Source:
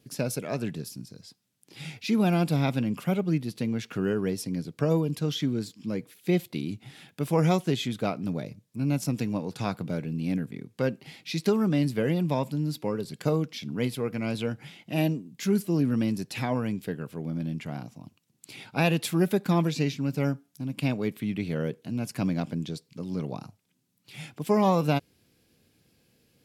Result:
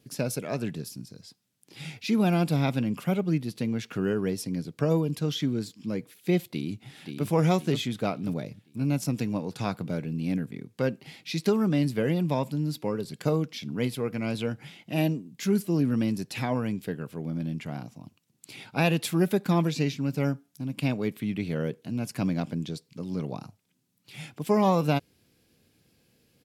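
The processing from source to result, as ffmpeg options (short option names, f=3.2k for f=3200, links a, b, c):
-filter_complex "[0:a]asplit=2[a][b];[b]afade=t=in:st=6.45:d=0.01,afade=t=out:st=7.27:d=0.01,aecho=0:1:530|1060|1590|2120|2650:0.501187|0.200475|0.08019|0.032076|0.0128304[c];[a][c]amix=inputs=2:normalize=0"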